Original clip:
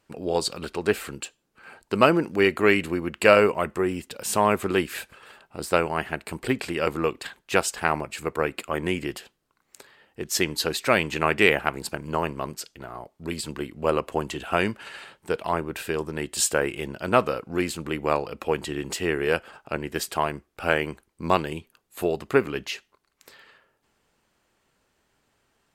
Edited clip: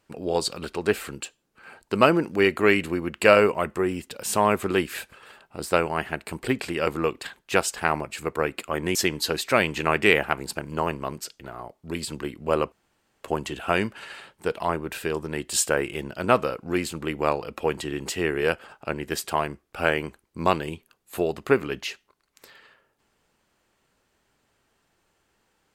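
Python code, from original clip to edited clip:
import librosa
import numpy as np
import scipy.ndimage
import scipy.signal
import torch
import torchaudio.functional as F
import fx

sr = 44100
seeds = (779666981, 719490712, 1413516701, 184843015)

y = fx.edit(x, sr, fx.cut(start_s=8.95, length_s=1.36),
    fx.insert_room_tone(at_s=14.08, length_s=0.52), tone=tone)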